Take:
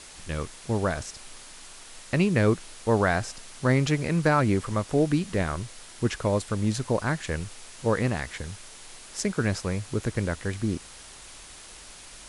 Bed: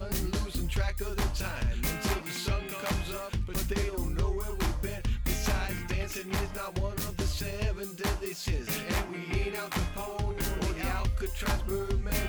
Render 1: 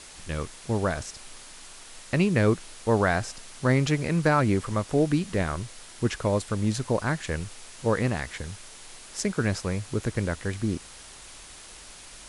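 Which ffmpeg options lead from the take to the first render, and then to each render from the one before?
-af anull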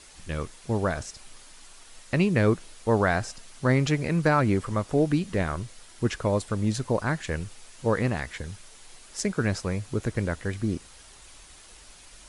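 -af "afftdn=nr=6:nf=-46"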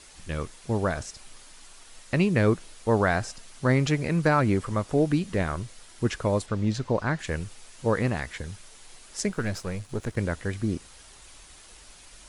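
-filter_complex "[0:a]asettb=1/sr,asplit=3[s0][s1][s2];[s0]atrim=end=6.464[s3];[s1]atrim=start=6.46:end=7.19,asetpts=PTS-STARTPTS,afade=t=in:d=0.004:c=qsin,afade=t=out:st=0.726:d=0.004:c=qsin,lowpass=5500[s4];[s2]atrim=start=7.186[s5];[s3][s4]acrossfade=d=0.004:c1=hsin:c2=qsin[s6];[s6][s5]acrossfade=d=0.004:c1=qsin:c2=hsin,asettb=1/sr,asplit=3[s7][s8][s9];[s7]atrim=end=9.294[s10];[s8]atrim=start=9.29:end=10.17,asetpts=PTS-STARTPTS,afade=t=in:d=0.004:c=qsin,afade=t=out:st=0.876:d=0.004:c=qsin,aeval=exprs='if(lt(val(0),0),0.447*val(0),val(0))':c=same[s11];[s9]atrim=start=10.166[s12];[s10][s11]acrossfade=d=0.004:c1=hsin:c2=qsin[s13];[s13][s12]acrossfade=d=0.004:c1=qsin:c2=hsin"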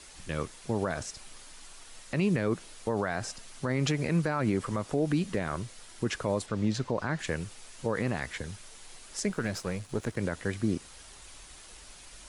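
-filter_complex "[0:a]acrossover=split=110[s0][s1];[s0]acompressor=threshold=0.00562:ratio=6[s2];[s2][s1]amix=inputs=2:normalize=0,alimiter=limit=0.126:level=0:latency=1:release=61"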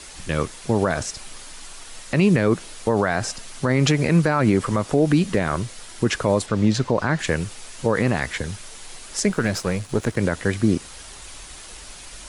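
-af "volume=3.16"

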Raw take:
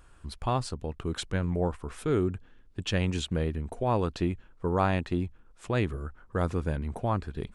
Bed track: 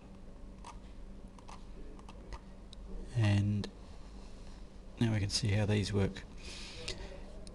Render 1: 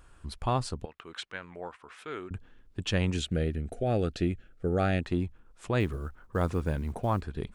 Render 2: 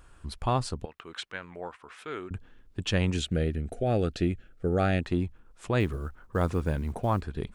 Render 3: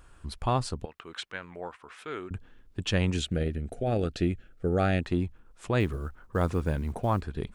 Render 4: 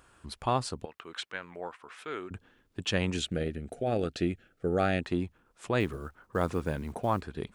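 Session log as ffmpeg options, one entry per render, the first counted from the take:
-filter_complex "[0:a]asettb=1/sr,asplit=3[s0][s1][s2];[s0]atrim=end=0.854[s3];[s1]atrim=start=0.85:end=2.31,asetpts=PTS-STARTPTS,afade=t=in:d=0.004:c=qsin,afade=t=out:st=1.456:d=0.004:c=qsin,bandpass=f=2100:t=q:w=0.83[s4];[s2]atrim=start=2.306[s5];[s3][s4]acrossfade=d=0.004:c1=hsin:c2=qsin[s6];[s6][s5]acrossfade=d=0.004:c1=qsin:c2=hsin,asettb=1/sr,asplit=3[s7][s8][s9];[s7]atrim=end=3.164[s10];[s8]atrim=start=3.16:end=5.02,asetpts=PTS-STARTPTS,afade=t=in:d=0.004:c=qsin,afade=t=out:st=1.856:d=0.004:c=qsin,asuperstop=centerf=990:order=4:qfactor=1.9[s11];[s9]atrim=start=5.016[s12];[s10][s11]acrossfade=d=0.004:c1=hsin:c2=qsin[s13];[s13][s12]acrossfade=d=0.004:c1=qsin:c2=hsin,asettb=1/sr,asplit=3[s14][s15][s16];[s14]atrim=end=5.804[s17];[s15]atrim=start=5.8:end=7.23,asetpts=PTS-STARTPTS,afade=t=in:d=0.004:c=qsin,afade=t=out:st=1.426:d=0.004:c=qsin,acrusher=bits=9:mode=log:mix=0:aa=0.000001[s18];[s16]atrim=start=7.226[s19];[s17][s18]acrossfade=d=0.004:c1=hsin:c2=qsin[s20];[s20][s19]acrossfade=d=0.004:c1=qsin:c2=hsin"
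-af "volume=1.19"
-filter_complex "[0:a]asettb=1/sr,asplit=3[s0][s1][s2];[s0]atrim=end=3.324[s3];[s1]atrim=start=3.32:end=4.16,asetpts=PTS-STARTPTS,afade=t=in:d=0.004:c=qsin,afade=t=out:st=0.836:d=0.004:c=qsin,tremolo=f=140:d=0.333[s4];[s2]atrim=start=4.156[s5];[s3][s4]acrossfade=d=0.004:c1=hsin:c2=qsin[s6];[s6][s5]acrossfade=d=0.004:c1=qsin:c2=hsin"
-af "highpass=f=190:p=1"

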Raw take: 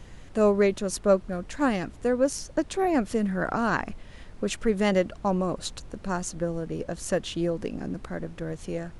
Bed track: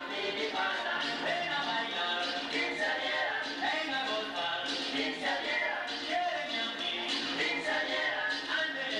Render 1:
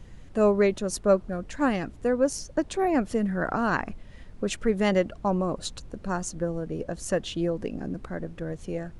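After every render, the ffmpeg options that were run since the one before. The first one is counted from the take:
-af "afftdn=nr=6:nf=-46"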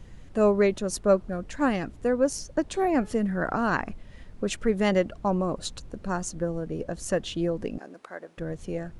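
-filter_complex "[0:a]asettb=1/sr,asplit=3[s0][s1][s2];[s0]atrim=end=2.704[s3];[s1]atrim=start=2.7:end=3.17,asetpts=PTS-STARTPTS,afade=t=in:d=0.004:c=qsin,afade=t=out:st=0.466:d=0.004:c=qsin,bandreject=f=426.4:t=h:w=4,bandreject=f=852.8:t=h:w=4,bandreject=f=1279.2:t=h:w=4,bandreject=f=1705.6:t=h:w=4,bandreject=f=2132:t=h:w=4,bandreject=f=2558.4:t=h:w=4,bandreject=f=2984.8:t=h:w=4,bandreject=f=3411.2:t=h:w=4,bandreject=f=3837.6:t=h:w=4,bandreject=f=4264:t=h:w=4,bandreject=f=4690.4:t=h:w=4,bandreject=f=5116.8:t=h:w=4,bandreject=f=5543.2:t=h:w=4,bandreject=f=5969.6:t=h:w=4,bandreject=f=6396:t=h:w=4,bandreject=f=6822.4:t=h:w=4,bandreject=f=7248.8:t=h:w=4,bandreject=f=7675.2:t=h:w=4,bandreject=f=8101.6:t=h:w=4,bandreject=f=8528:t=h:w=4,bandreject=f=8954.4:t=h:w=4,bandreject=f=9380.8:t=h:w=4,bandreject=f=9807.2:t=h:w=4,bandreject=f=10233.6:t=h:w=4,bandreject=f=10660:t=h:w=4,bandreject=f=11086.4:t=h:w=4,bandreject=f=11512.8:t=h:w=4,bandreject=f=11939.2:t=h:w=4[s4];[s2]atrim=start=3.166[s5];[s3][s4]acrossfade=d=0.004:c1=hsin:c2=qsin[s6];[s6][s5]acrossfade=d=0.004:c1=qsin:c2=hsin,asettb=1/sr,asplit=3[s7][s8][s9];[s7]atrim=end=7.784[s10];[s8]atrim=start=7.78:end=8.38,asetpts=PTS-STARTPTS,afade=t=in:d=0.004:c=qsin,afade=t=out:st=0.596:d=0.004:c=qsin,highpass=570[s11];[s9]atrim=start=8.376[s12];[s10][s11]acrossfade=d=0.004:c1=hsin:c2=qsin[s13];[s13][s12]acrossfade=d=0.004:c1=qsin:c2=hsin"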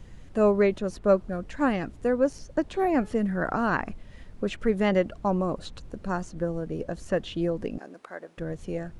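-filter_complex "[0:a]acrossover=split=3600[s0][s1];[s1]acompressor=threshold=0.00282:ratio=4:attack=1:release=60[s2];[s0][s2]amix=inputs=2:normalize=0"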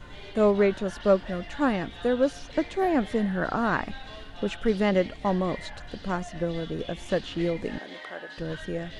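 -filter_complex "[1:a]volume=0.282[s0];[0:a][s0]amix=inputs=2:normalize=0"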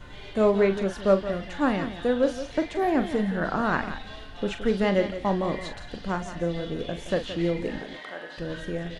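-filter_complex "[0:a]asplit=2[s0][s1];[s1]adelay=41,volume=0.316[s2];[s0][s2]amix=inputs=2:normalize=0,aecho=1:1:171:0.251"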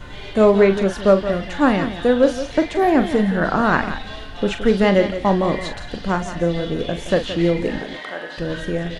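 -af "volume=2.51,alimiter=limit=0.708:level=0:latency=1"

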